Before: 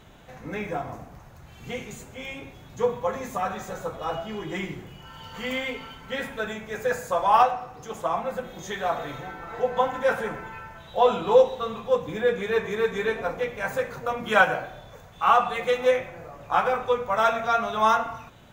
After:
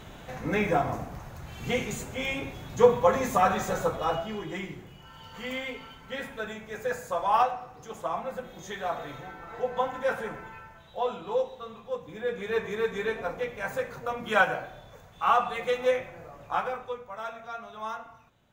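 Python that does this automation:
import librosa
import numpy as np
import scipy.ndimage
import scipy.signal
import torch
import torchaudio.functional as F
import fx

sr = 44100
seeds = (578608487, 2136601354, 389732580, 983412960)

y = fx.gain(x, sr, db=fx.line((3.81, 5.5), (4.63, -5.0), (10.48, -5.0), (11.17, -11.0), (12.08, -11.0), (12.55, -4.0), (16.43, -4.0), (17.13, -15.5)))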